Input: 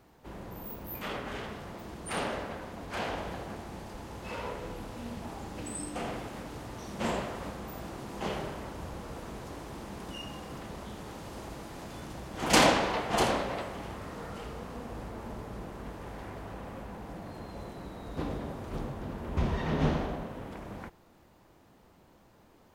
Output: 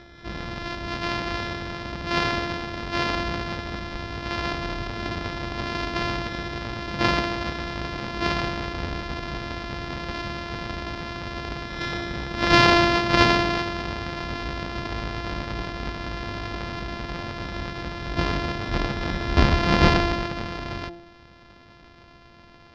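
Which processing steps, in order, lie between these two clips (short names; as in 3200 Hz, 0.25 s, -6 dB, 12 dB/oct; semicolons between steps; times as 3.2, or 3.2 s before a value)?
sample sorter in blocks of 128 samples; Chebyshev low-pass 5100 Hz, order 4; de-hum 171.8 Hz, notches 5; reverse echo 0.728 s -19 dB; maximiser +14 dB; gain -1 dB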